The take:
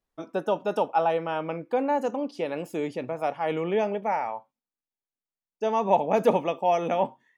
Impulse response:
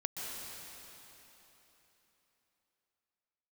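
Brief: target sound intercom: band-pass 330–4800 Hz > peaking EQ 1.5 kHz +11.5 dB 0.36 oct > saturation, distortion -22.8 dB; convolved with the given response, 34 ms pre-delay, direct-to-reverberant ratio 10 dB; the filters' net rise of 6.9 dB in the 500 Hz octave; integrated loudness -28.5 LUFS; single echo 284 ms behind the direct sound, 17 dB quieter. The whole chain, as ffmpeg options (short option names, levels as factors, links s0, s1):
-filter_complex "[0:a]equalizer=f=500:t=o:g=9,aecho=1:1:284:0.141,asplit=2[s0][s1];[1:a]atrim=start_sample=2205,adelay=34[s2];[s1][s2]afir=irnorm=-1:irlink=0,volume=0.237[s3];[s0][s3]amix=inputs=2:normalize=0,highpass=330,lowpass=4800,equalizer=f=1500:t=o:w=0.36:g=11.5,asoftclip=threshold=0.562,volume=0.447"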